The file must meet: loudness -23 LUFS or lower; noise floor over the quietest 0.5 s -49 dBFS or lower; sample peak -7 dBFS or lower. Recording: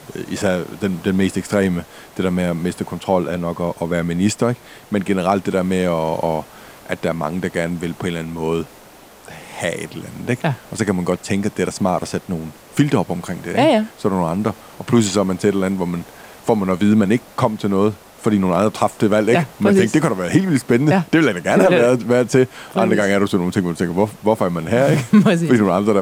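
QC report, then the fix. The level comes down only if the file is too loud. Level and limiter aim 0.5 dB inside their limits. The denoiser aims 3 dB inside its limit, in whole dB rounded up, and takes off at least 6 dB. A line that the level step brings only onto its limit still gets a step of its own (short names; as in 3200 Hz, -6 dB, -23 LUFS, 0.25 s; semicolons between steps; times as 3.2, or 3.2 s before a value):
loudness -18.5 LUFS: fail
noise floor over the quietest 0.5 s -43 dBFS: fail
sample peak -2.5 dBFS: fail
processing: denoiser 6 dB, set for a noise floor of -43 dBFS; gain -5 dB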